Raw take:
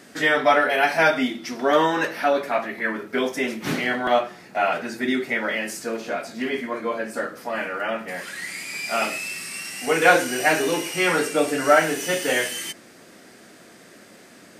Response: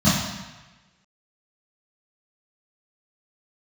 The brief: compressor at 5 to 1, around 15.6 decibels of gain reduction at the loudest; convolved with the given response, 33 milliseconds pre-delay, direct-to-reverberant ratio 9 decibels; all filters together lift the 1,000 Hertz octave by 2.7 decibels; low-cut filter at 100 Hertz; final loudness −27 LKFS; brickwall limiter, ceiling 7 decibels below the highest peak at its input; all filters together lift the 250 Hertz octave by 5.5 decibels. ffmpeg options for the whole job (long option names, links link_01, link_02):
-filter_complex "[0:a]highpass=100,equalizer=frequency=250:width_type=o:gain=6.5,equalizer=frequency=1000:width_type=o:gain=3.5,acompressor=threshold=-26dB:ratio=5,alimiter=limit=-21.5dB:level=0:latency=1,asplit=2[link_01][link_02];[1:a]atrim=start_sample=2205,adelay=33[link_03];[link_02][link_03]afir=irnorm=-1:irlink=0,volume=-28dB[link_04];[link_01][link_04]amix=inputs=2:normalize=0,volume=2.5dB"